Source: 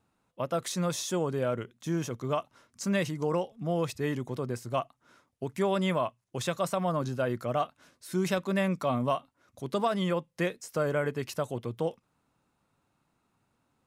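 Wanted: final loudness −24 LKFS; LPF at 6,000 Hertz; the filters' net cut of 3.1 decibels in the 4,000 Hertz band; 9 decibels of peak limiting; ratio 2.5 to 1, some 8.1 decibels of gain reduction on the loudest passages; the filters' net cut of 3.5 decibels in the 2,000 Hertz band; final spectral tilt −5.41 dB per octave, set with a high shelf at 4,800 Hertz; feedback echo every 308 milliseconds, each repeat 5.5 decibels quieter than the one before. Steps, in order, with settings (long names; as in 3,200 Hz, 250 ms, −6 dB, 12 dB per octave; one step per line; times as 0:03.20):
low-pass filter 6,000 Hz
parametric band 2,000 Hz −4.5 dB
parametric band 4,000 Hz −4.5 dB
high-shelf EQ 4,800 Hz +6 dB
downward compressor 2.5 to 1, threshold −37 dBFS
brickwall limiter −31.5 dBFS
repeating echo 308 ms, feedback 53%, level −5.5 dB
level +17 dB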